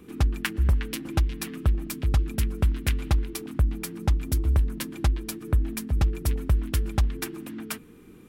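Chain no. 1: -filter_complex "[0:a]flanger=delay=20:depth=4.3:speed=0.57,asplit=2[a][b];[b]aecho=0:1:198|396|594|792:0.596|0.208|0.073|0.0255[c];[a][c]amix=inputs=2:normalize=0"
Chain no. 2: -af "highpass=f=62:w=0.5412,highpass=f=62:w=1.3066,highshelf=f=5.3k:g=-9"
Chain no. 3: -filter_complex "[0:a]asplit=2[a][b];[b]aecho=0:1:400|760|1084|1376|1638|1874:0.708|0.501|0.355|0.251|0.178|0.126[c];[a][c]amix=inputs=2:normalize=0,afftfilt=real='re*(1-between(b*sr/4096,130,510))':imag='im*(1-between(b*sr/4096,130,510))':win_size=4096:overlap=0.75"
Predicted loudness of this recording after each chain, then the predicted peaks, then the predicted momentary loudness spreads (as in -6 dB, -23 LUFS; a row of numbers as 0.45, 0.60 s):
-29.5, -30.5, -26.0 LUFS; -12.5, -10.0, -11.0 dBFS; 4, 8, 3 LU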